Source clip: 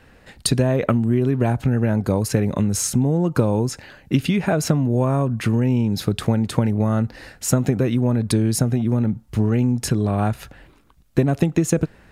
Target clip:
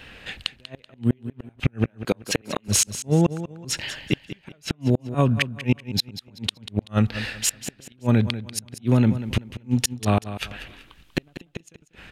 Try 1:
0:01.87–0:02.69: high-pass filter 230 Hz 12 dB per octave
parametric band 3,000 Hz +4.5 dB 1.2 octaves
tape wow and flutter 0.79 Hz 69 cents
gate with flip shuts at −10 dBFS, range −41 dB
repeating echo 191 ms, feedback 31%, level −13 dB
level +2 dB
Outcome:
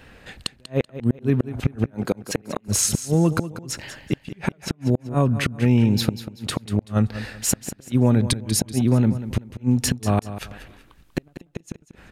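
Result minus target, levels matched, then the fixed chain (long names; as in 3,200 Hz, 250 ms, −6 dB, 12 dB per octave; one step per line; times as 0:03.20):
4,000 Hz band −4.0 dB
0:01.87–0:02.69: high-pass filter 230 Hz 12 dB per octave
parametric band 3,000 Hz +15 dB 1.2 octaves
tape wow and flutter 0.79 Hz 69 cents
gate with flip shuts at −10 dBFS, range −41 dB
repeating echo 191 ms, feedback 31%, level −13 dB
level +2 dB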